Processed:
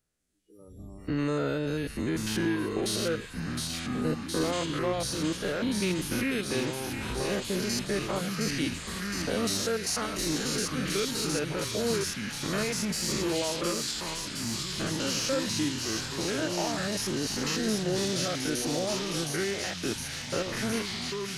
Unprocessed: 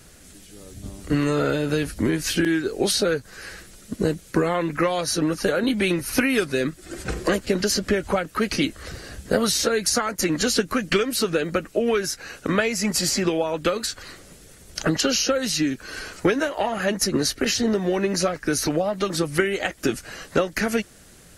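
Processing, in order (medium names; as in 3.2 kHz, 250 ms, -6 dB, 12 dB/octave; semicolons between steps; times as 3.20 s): spectrogram pixelated in time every 100 ms; spectral noise reduction 26 dB; in parallel at -10.5 dB: saturation -25.5 dBFS, distortion -9 dB; on the sum: ever faster or slower copies 707 ms, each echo -5 st, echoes 3, each echo -6 dB; feedback echo behind a high-pass 714 ms, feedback 81%, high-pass 2.5 kHz, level -3 dB; trim -7.5 dB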